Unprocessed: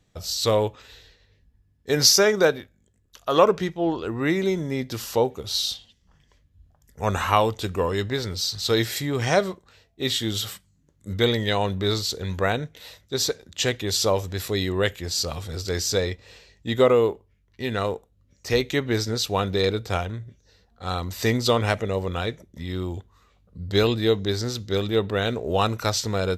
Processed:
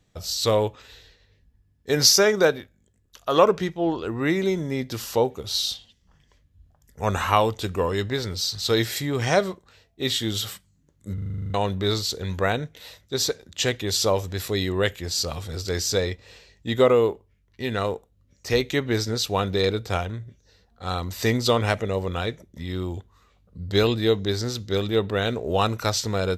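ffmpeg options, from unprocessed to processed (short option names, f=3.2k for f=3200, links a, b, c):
-filter_complex "[0:a]asplit=11[a][b][c][d][e][f][g][h][i][j][k];[a]atrim=end=11.182[l];[b]atrim=start=11.138:end=11.182[m];[c]atrim=start=11.138:end=11.182[n];[d]atrim=start=11.138:end=11.182[o];[e]atrim=start=11.138:end=11.182[p];[f]atrim=start=11.138:end=11.182[q];[g]atrim=start=11.138:end=11.182[r];[h]atrim=start=11.138:end=11.182[s];[i]atrim=start=11.138:end=11.182[t];[j]atrim=start=11.138:end=11.182[u];[k]atrim=start=11.538[v];[l][m]acrossfade=d=0.004:c1=hsin:c2=hsin[w];[w][n]acrossfade=d=0.004:c1=hsin:c2=hsin[x];[x][o]acrossfade=d=0.004:c1=hsin:c2=hsin[y];[y][p]acrossfade=d=0.004:c1=hsin:c2=hsin[z];[z][q]acrossfade=d=0.004:c1=hsin:c2=hsin[aa];[aa][r]acrossfade=d=0.004:c1=hsin:c2=hsin[ab];[ab][s]acrossfade=d=0.004:c1=hsin:c2=hsin[ac];[ac][t]acrossfade=d=0.004:c1=hsin:c2=hsin[ad];[ad][u]acrossfade=d=0.004:c1=hsin:c2=hsin[ae];[ae][v]acrossfade=d=0.004:c1=hsin:c2=hsin"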